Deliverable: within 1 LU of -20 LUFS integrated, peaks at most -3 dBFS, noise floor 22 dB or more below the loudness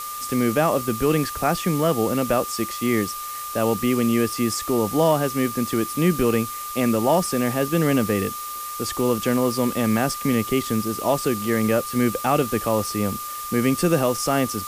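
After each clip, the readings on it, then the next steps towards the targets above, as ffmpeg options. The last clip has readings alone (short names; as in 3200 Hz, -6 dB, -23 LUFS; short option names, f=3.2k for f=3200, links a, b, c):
steady tone 1200 Hz; tone level -31 dBFS; noise floor -32 dBFS; noise floor target -44 dBFS; loudness -22.0 LUFS; peak -7.5 dBFS; loudness target -20.0 LUFS
-> -af "bandreject=f=1.2k:w=30"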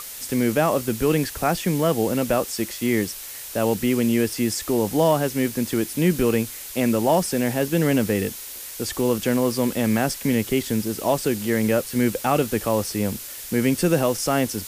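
steady tone none; noise floor -36 dBFS; noise floor target -45 dBFS
-> -af "afftdn=nr=9:nf=-36"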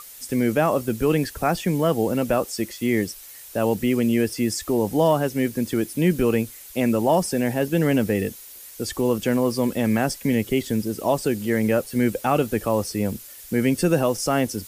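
noise floor -42 dBFS; noise floor target -45 dBFS
-> -af "afftdn=nr=6:nf=-42"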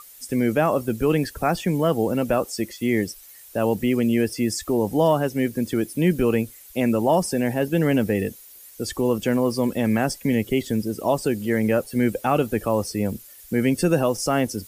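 noise floor -46 dBFS; loudness -23.0 LUFS; peak -8.0 dBFS; loudness target -20.0 LUFS
-> -af "volume=3dB"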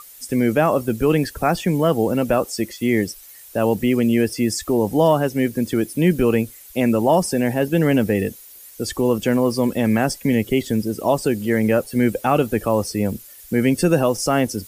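loudness -20.0 LUFS; peak -5.0 dBFS; noise floor -43 dBFS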